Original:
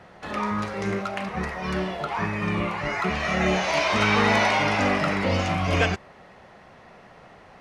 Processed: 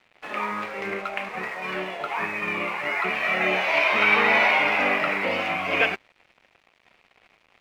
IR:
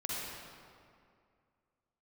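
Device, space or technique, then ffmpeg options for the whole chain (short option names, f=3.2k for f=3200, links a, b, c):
pocket radio on a weak battery: -af "highpass=330,lowpass=3.1k,aeval=exprs='sgn(val(0))*max(abs(val(0))-0.00447,0)':c=same,equalizer=f=2.4k:t=o:w=0.57:g=9"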